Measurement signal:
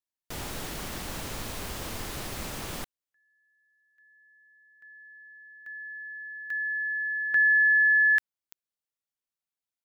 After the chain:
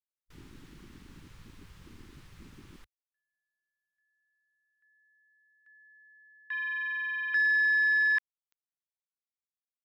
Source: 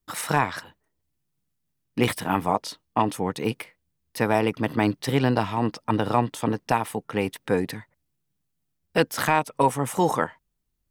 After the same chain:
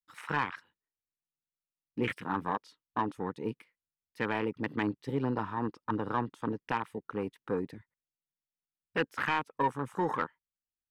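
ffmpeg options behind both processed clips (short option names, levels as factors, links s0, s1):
-filter_complex "[0:a]afwtdn=0.0355,equalizer=f=670:t=o:w=0.67:g=-13.5,asplit=2[s0][s1];[s1]highpass=f=720:p=1,volume=3.98,asoftclip=type=tanh:threshold=0.335[s2];[s0][s2]amix=inputs=2:normalize=0,lowpass=f=2600:p=1,volume=0.501,volume=0.447"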